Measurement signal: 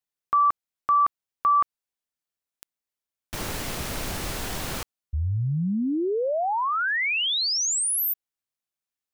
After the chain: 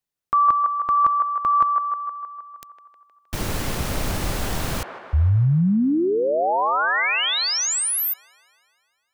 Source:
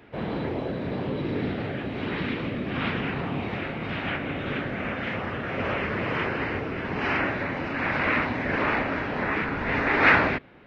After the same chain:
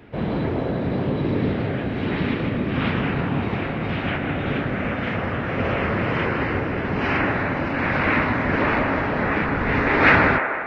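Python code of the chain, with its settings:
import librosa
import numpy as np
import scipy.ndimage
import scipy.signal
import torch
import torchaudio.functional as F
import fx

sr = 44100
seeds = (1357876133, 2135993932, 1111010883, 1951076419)

p1 = fx.low_shelf(x, sr, hz=300.0, db=7.0)
p2 = p1 + fx.echo_wet_bandpass(p1, sr, ms=156, feedback_pct=62, hz=940.0, wet_db=-4, dry=0)
y = F.gain(torch.from_numpy(p2), 2.0).numpy()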